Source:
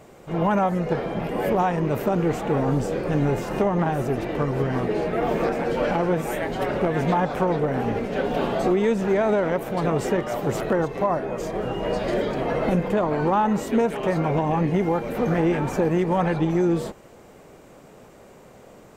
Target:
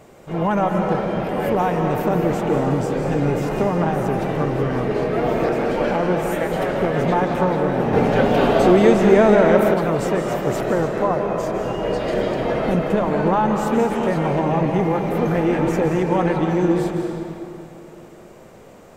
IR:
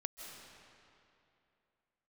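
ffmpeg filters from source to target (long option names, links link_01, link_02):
-filter_complex "[1:a]atrim=start_sample=2205[link_01];[0:a][link_01]afir=irnorm=-1:irlink=0,asettb=1/sr,asplit=3[link_02][link_03][link_04];[link_02]atrim=end=7.934[link_05];[link_03]atrim=start=7.93:end=9.74,asetpts=PTS-STARTPTS,afade=type=in:duration=0.004:curve=qsin,afade=type=out:start_time=1.806:duration=0.004:curve=qsin,acontrast=34[link_06];[link_04]atrim=start=9.736[link_07];[link_05][link_06]acrossfade=duration=0.004:curve1=hsin:curve2=qsin[link_08];[link_08][link_07]acrossfade=duration=0.004:curve1=qsin:curve2=hsin,volume=4.5dB"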